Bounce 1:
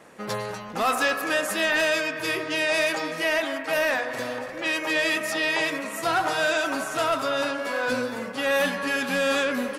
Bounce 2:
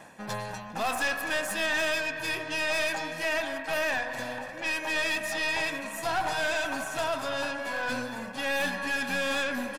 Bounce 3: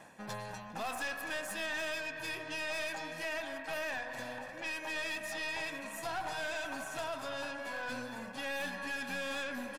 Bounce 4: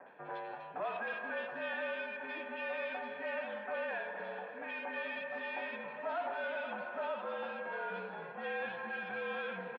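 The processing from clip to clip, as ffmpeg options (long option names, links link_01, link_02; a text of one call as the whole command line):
ffmpeg -i in.wav -af "aecho=1:1:1.2:0.56,areverse,acompressor=mode=upward:threshold=-30dB:ratio=2.5,areverse,aeval=exprs='(tanh(10*val(0)+0.45)-tanh(0.45))/10':channel_layout=same,volume=-3dB" out.wav
ffmpeg -i in.wav -af "acompressor=threshold=-35dB:ratio=1.5,volume=-5.5dB" out.wav
ffmpeg -i in.wav -filter_complex "[0:a]acrossover=split=280 2700:gain=0.126 1 0.2[link_01][link_02][link_03];[link_01][link_02][link_03]amix=inputs=3:normalize=0,highpass=frequency=240:width_type=q:width=0.5412,highpass=frequency=240:width_type=q:width=1.307,lowpass=frequency=3600:width_type=q:width=0.5176,lowpass=frequency=3600:width_type=q:width=0.7071,lowpass=frequency=3600:width_type=q:width=1.932,afreqshift=-58,acrossover=split=2000[link_04][link_05];[link_05]adelay=60[link_06];[link_04][link_06]amix=inputs=2:normalize=0,volume=2dB" out.wav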